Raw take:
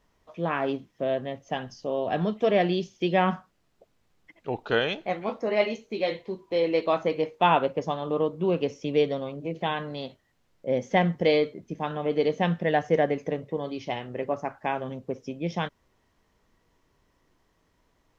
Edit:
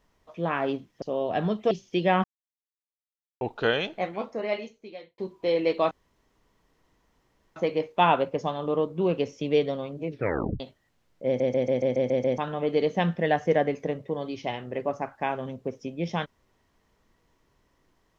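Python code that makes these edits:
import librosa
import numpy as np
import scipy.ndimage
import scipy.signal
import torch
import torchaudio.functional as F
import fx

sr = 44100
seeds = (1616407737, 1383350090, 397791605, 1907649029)

y = fx.edit(x, sr, fx.cut(start_s=1.02, length_s=0.77),
    fx.cut(start_s=2.48, length_s=0.31),
    fx.silence(start_s=3.32, length_s=1.17),
    fx.fade_out_span(start_s=5.03, length_s=1.23),
    fx.insert_room_tone(at_s=6.99, length_s=1.65),
    fx.tape_stop(start_s=9.51, length_s=0.52),
    fx.stutter_over(start_s=10.69, slice_s=0.14, count=8), tone=tone)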